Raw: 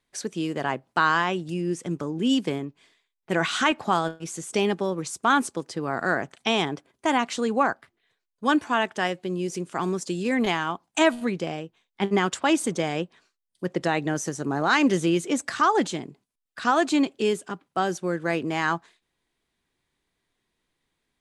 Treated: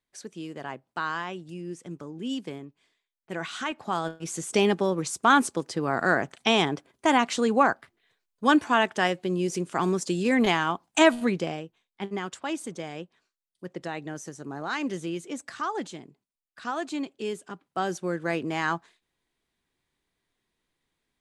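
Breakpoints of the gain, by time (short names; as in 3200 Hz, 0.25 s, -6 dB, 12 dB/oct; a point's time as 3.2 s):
3.73 s -9.5 dB
4.35 s +1.5 dB
11.33 s +1.5 dB
12.14 s -10 dB
17.07 s -10 dB
17.95 s -2.5 dB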